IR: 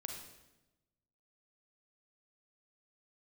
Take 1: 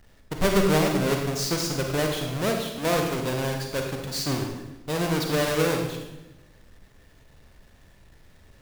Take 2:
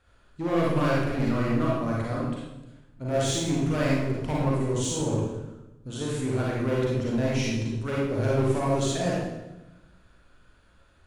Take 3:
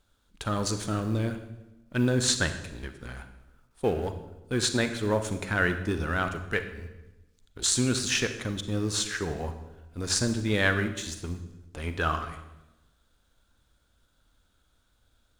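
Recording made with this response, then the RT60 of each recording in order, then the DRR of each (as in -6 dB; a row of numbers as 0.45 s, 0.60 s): 1; 1.0 s, 1.0 s, 1.0 s; 2.0 dB, -5.5 dB, 8.5 dB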